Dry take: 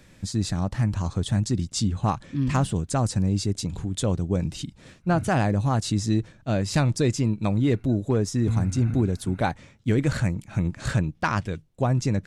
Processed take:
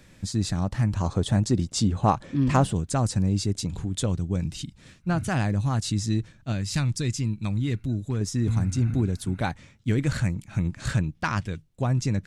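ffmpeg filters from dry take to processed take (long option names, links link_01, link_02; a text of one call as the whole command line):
ffmpeg -i in.wav -af "asetnsamples=nb_out_samples=441:pad=0,asendcmd='1 equalizer g 6;2.72 equalizer g -1.5;4.06 equalizer g -7.5;6.52 equalizer g -14;8.21 equalizer g -5.5',equalizer=frequency=560:width_type=o:width=2.1:gain=-1" out.wav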